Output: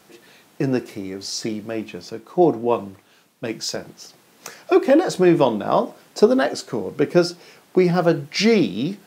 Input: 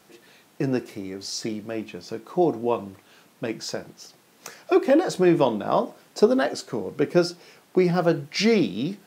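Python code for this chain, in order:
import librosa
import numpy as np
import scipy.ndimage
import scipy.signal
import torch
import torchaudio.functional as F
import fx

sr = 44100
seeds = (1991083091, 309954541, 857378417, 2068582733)

y = fx.band_widen(x, sr, depth_pct=40, at=(2.1, 3.76))
y = F.gain(torch.from_numpy(y), 3.5).numpy()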